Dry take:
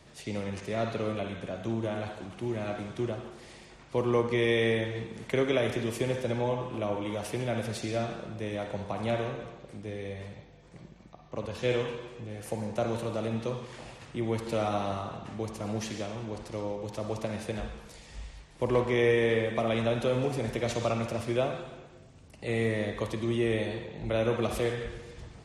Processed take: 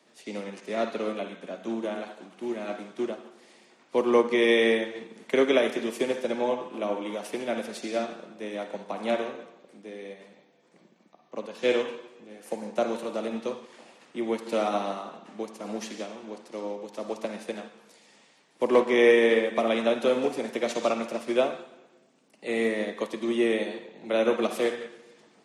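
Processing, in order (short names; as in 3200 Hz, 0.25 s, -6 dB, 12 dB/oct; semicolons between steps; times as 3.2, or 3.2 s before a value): steep high-pass 200 Hz 36 dB/oct; upward expander 1.5:1, over -46 dBFS; gain +7 dB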